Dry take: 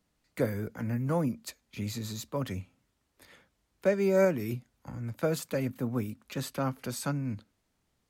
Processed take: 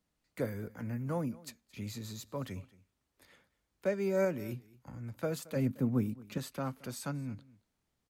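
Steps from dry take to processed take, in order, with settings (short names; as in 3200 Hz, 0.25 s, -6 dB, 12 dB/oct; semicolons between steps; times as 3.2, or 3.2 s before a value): 5.56–6.38 bell 180 Hz +9 dB 2.3 oct; on a send: echo 0.223 s -21.5 dB; on the sum: gain -6 dB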